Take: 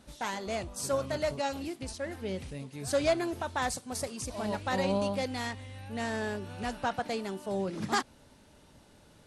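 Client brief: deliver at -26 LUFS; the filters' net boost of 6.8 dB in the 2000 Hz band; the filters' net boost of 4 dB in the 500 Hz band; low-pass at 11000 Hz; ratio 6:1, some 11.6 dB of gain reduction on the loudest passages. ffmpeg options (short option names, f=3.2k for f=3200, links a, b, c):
-af "lowpass=11k,equalizer=f=500:t=o:g=4.5,equalizer=f=2k:t=o:g=8,acompressor=threshold=-31dB:ratio=6,volume=10dB"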